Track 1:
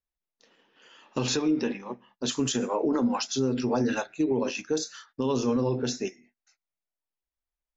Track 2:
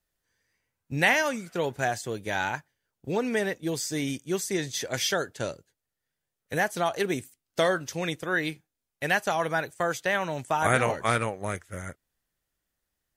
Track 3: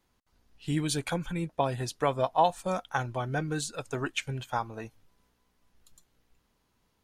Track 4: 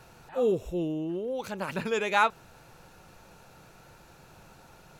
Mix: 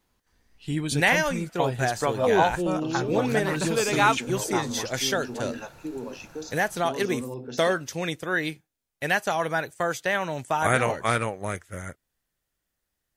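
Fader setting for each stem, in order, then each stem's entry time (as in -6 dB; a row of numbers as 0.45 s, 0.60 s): -9.0 dB, +1.0 dB, +1.0 dB, +2.5 dB; 1.65 s, 0.00 s, 0.00 s, 1.85 s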